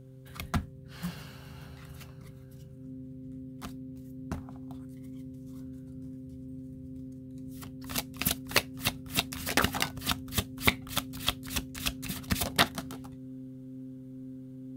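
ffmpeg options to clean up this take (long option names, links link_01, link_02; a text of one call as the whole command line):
ffmpeg -i in.wav -af "bandreject=frequency=131.1:width_type=h:width=4,bandreject=frequency=262.2:width_type=h:width=4,bandreject=frequency=393.3:width_type=h:width=4,bandreject=frequency=524.4:width_type=h:width=4,bandreject=frequency=260:width=30" out.wav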